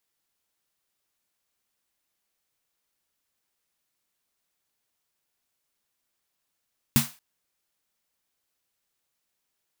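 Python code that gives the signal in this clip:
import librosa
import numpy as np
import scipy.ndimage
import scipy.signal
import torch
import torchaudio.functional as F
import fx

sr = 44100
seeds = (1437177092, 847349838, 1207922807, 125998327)

y = fx.drum_snare(sr, seeds[0], length_s=0.23, hz=140.0, second_hz=230.0, noise_db=-4.0, noise_from_hz=690.0, decay_s=0.18, noise_decay_s=0.32)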